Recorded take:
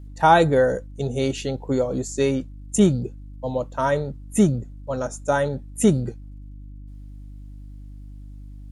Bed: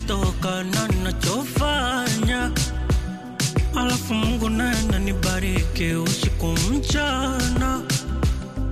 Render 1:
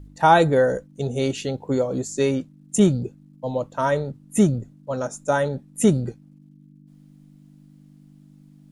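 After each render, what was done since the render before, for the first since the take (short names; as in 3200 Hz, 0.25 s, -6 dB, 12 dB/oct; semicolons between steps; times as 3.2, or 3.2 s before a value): de-hum 50 Hz, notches 2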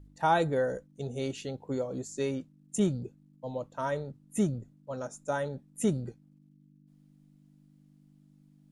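gain -10.5 dB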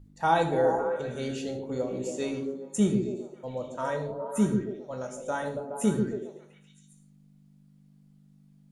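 delay with a stepping band-pass 0.138 s, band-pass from 290 Hz, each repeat 0.7 oct, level -1 dB; non-linear reverb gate 0.19 s falling, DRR 3.5 dB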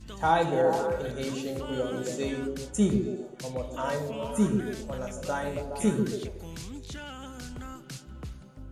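add bed -19 dB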